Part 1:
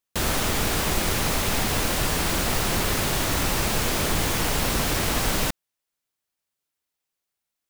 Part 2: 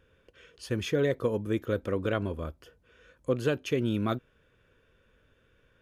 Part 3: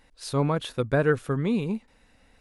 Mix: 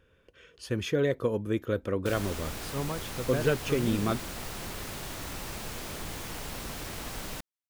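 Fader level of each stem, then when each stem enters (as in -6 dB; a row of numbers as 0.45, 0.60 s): -14.5, 0.0, -10.0 dB; 1.90, 0.00, 2.40 s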